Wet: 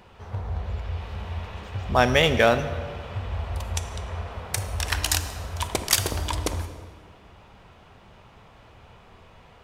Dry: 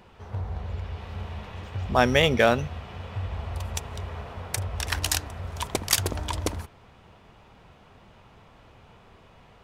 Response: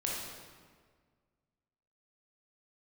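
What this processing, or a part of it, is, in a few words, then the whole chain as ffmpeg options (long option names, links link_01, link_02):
saturated reverb return: -filter_complex "[0:a]asettb=1/sr,asplit=3[link_01][link_02][link_03];[link_01]atrim=end=3.734[link_04];[link_02]atrim=start=3.73:end=4.32,asetpts=PTS-STARTPTS,afade=type=in:duration=0.004:curve=qsin,afade=type=out:start_time=0.586:duration=0.004:curve=qsin,lowpass=11000[link_05];[link_03]atrim=start=4.316[link_06];[link_04][link_05]acrossfade=duration=0.004:curve1=hsin:curve2=qsin[link_07];[link_07][link_06]acrossfade=duration=0.004:curve1=qsin:curve2=hsin,equalizer=frequency=240:width_type=o:width=1.8:gain=-2.5,asplit=2[link_08][link_09];[1:a]atrim=start_sample=2205[link_10];[link_09][link_10]afir=irnorm=-1:irlink=0,asoftclip=type=tanh:threshold=-14.5dB,volume=-9.5dB[link_11];[link_08][link_11]amix=inputs=2:normalize=0"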